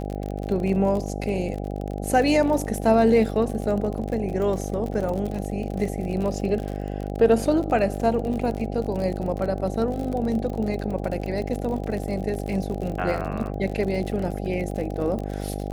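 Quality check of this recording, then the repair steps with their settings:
buzz 50 Hz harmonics 16 -30 dBFS
crackle 42 per s -29 dBFS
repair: de-click; de-hum 50 Hz, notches 16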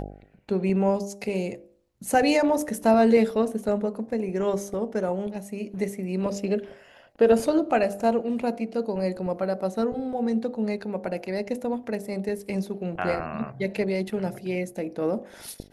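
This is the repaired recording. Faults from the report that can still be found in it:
nothing left

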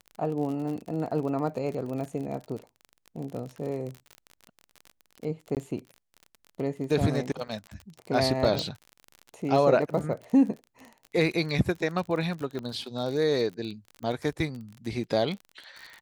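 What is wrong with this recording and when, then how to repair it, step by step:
crackle 38 per s -34 dBFS
5.55–5.57 s: dropout 18 ms
7.48–7.49 s: dropout 5.9 ms
8.59 s: pop -15 dBFS
12.59 s: pop -23 dBFS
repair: de-click; interpolate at 5.55 s, 18 ms; interpolate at 7.48 s, 5.9 ms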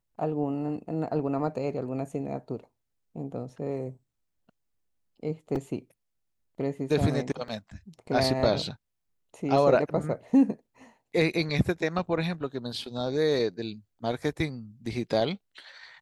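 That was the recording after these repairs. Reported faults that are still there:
8.59 s: pop
12.59 s: pop

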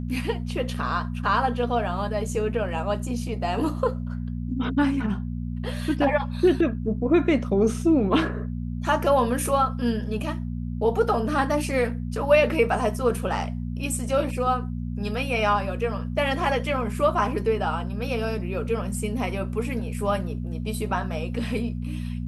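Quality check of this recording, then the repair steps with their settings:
hum 60 Hz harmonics 4 -30 dBFS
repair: de-hum 60 Hz, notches 4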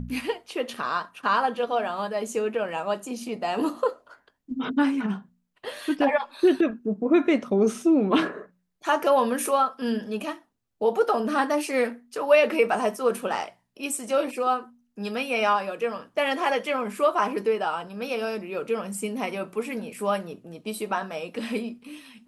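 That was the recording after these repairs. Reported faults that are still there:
nothing left

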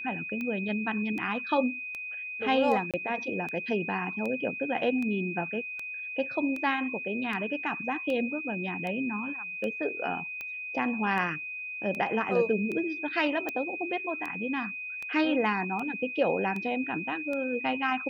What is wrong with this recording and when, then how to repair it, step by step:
tick 78 rpm -23 dBFS
whine 2.5 kHz -35 dBFS
2.91–2.94 s: dropout 27 ms
13.49 s: pop -19 dBFS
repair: de-click; band-stop 2.5 kHz, Q 30; interpolate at 2.91 s, 27 ms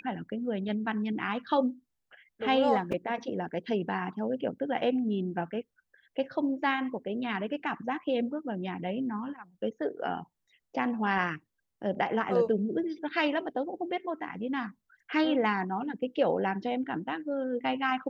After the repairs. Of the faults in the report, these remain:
nothing left

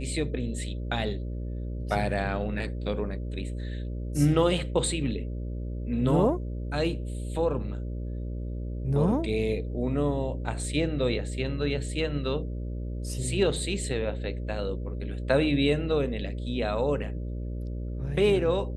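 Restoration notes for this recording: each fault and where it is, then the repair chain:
buzz 60 Hz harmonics 10 -33 dBFS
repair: de-hum 60 Hz, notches 10

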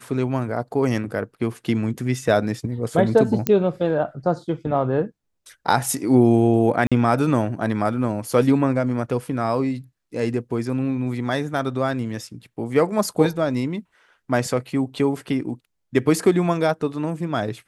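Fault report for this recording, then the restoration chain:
3.47 s: pop -6 dBFS
6.87–6.92 s: dropout 46 ms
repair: de-click; interpolate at 6.87 s, 46 ms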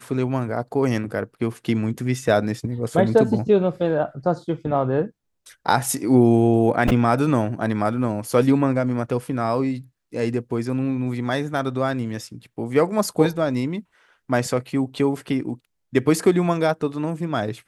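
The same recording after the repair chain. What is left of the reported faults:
nothing left

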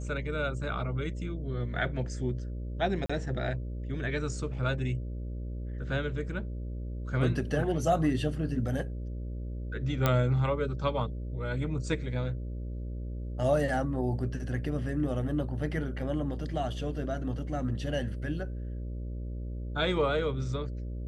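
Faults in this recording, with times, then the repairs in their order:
buzz 60 Hz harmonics 10 -36 dBFS
3.06–3.10 s: dropout 35 ms
10.06 s: pop -11 dBFS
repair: de-click; de-hum 60 Hz, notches 10; interpolate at 3.06 s, 35 ms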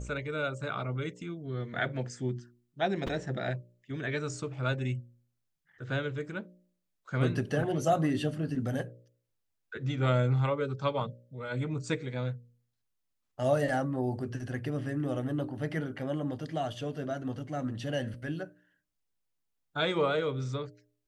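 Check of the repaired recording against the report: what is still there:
10.06 s: pop

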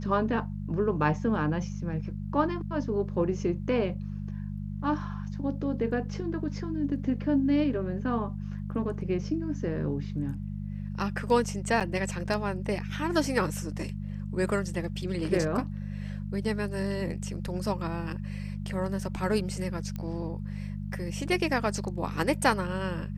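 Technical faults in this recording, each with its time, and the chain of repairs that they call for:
hum 50 Hz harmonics 4 -35 dBFS
11.80–11.81 s: dropout 7 ms
19.96 s: pop -23 dBFS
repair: de-click; de-hum 50 Hz, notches 4; interpolate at 11.80 s, 7 ms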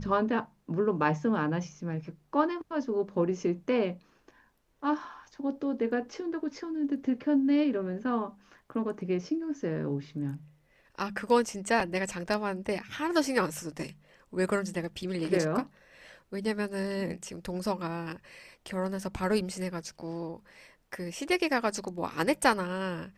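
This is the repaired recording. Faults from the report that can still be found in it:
nothing left

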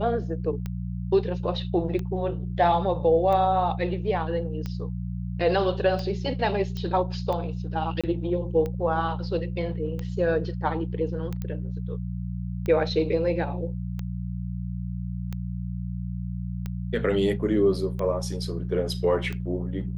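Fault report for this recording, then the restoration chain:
hum 60 Hz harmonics 3 -31 dBFS
tick 45 rpm -20 dBFS
6.77 s: pop -21 dBFS
8.01–8.04 s: dropout 26 ms
11.42 s: pop -20 dBFS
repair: de-click; de-hum 60 Hz, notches 3; interpolate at 8.01 s, 26 ms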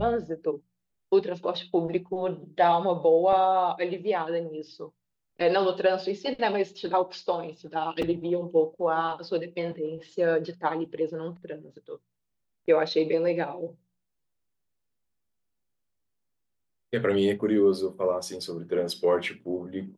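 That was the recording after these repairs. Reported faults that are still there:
nothing left

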